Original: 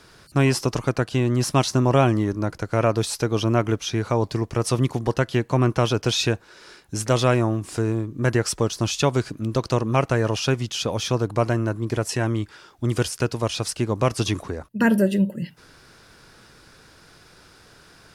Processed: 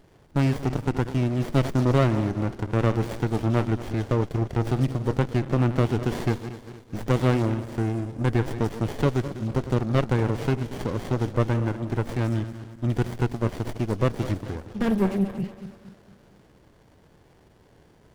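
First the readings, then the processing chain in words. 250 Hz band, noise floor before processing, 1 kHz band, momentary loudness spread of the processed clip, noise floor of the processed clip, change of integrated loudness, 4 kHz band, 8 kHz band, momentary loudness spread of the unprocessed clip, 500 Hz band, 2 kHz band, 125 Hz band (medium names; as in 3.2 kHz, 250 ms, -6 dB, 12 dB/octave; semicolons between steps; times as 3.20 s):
-2.0 dB, -52 dBFS, -5.0 dB, 7 LU, -57 dBFS, -3.0 dB, -12.0 dB, -16.5 dB, 6 LU, -4.5 dB, -6.0 dB, -1.0 dB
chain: backward echo that repeats 116 ms, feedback 66%, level -12 dB; sliding maximum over 33 samples; trim -3 dB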